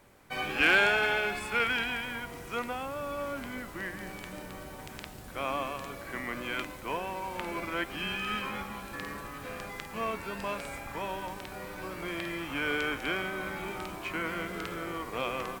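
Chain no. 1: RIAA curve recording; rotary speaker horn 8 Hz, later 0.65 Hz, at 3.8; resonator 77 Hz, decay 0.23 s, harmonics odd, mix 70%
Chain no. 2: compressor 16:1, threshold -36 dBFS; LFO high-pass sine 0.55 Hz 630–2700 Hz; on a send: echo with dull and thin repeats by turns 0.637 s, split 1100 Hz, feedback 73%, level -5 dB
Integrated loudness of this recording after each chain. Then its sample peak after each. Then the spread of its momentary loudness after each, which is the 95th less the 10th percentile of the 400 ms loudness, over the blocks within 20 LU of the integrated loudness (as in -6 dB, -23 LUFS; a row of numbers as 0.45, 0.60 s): -39.5, -37.5 LUFS; -15.0, -17.0 dBFS; 12, 6 LU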